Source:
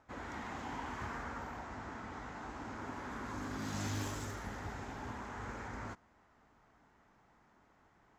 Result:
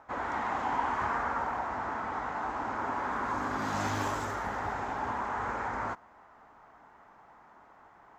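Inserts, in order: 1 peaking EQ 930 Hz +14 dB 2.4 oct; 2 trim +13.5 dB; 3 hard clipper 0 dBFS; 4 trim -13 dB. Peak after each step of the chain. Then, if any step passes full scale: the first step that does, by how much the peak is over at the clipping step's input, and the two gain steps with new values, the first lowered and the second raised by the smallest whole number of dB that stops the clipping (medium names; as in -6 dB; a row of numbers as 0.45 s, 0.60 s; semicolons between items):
-18.0 dBFS, -4.5 dBFS, -4.5 dBFS, -17.5 dBFS; nothing clips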